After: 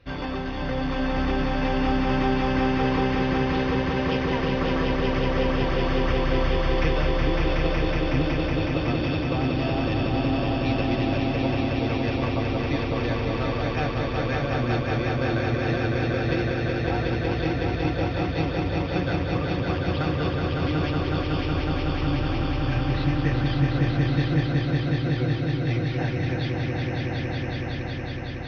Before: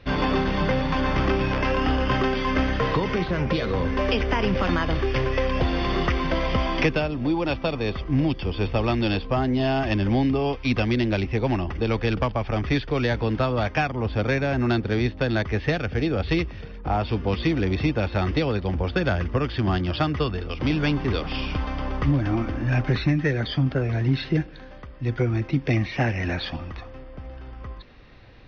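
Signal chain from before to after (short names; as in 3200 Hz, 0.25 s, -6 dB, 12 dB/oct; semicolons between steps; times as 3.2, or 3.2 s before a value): notch comb 210 Hz; on a send: swelling echo 0.185 s, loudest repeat 5, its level -4 dB; on the sum: gain -6.5 dB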